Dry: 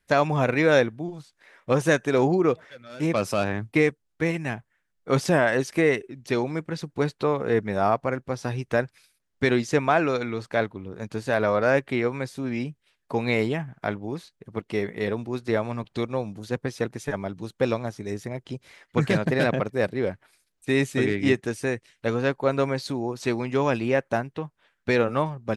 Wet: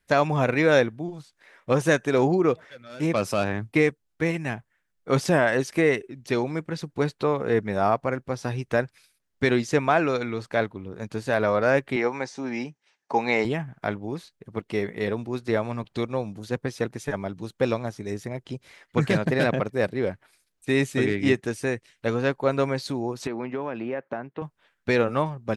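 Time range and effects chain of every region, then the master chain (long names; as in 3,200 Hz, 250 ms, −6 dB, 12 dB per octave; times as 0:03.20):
0:11.96–0:13.45: loudspeaker in its box 220–7,700 Hz, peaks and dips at 840 Hz +10 dB, 1,900 Hz +5 dB, 3,400 Hz −3 dB, 5,900 Hz +8 dB + notch filter 1,900 Hz, Q 29
0:23.27–0:24.42: downward compressor 10 to 1, threshold −24 dBFS + band-pass filter 190–2,100 Hz
whole clip: no processing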